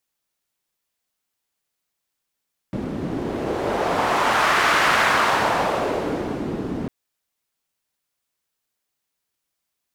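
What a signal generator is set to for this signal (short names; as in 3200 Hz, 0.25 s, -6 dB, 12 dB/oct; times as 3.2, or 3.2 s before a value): wind-like swept noise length 4.15 s, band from 240 Hz, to 1400 Hz, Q 1.4, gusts 1, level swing 10 dB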